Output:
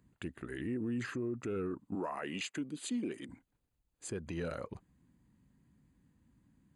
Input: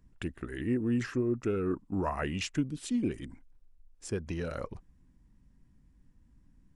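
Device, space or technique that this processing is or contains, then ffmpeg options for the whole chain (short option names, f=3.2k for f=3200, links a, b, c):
PA system with an anti-feedback notch: -filter_complex "[0:a]asettb=1/sr,asplit=3[a][b][c];[a]atrim=end=1.954[d];[b]atrim=start=1.95:end=3.29,asetpts=PTS-STARTPTS,afade=t=in:d=0.004:c=qsin,afade=t=out:st=1.336:d=0.004:c=qsin,highpass=260[e];[c]atrim=start=3.286[f];[d][e]acrossfade=d=0.004:c1=hsin:c2=qsin[g];[g][f]acrossfade=d=0.004:c1=qsin:c2=hsin,highpass=100,asuperstop=centerf=5500:order=8:qfactor=5.9,alimiter=level_in=5dB:limit=-24dB:level=0:latency=1:release=84,volume=-5dB"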